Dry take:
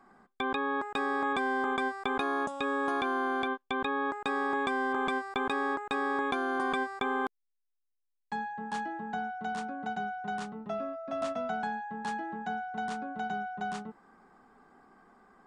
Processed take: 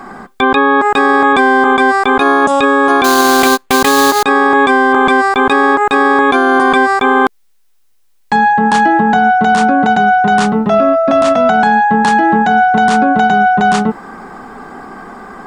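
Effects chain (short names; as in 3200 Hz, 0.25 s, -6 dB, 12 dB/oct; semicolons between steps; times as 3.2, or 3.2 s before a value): in parallel at +2.5 dB: negative-ratio compressor -34 dBFS; 3.04–4.23 on the sum: sample-rate reducer 5500 Hz, jitter 20%; maximiser +21.5 dB; gain -1 dB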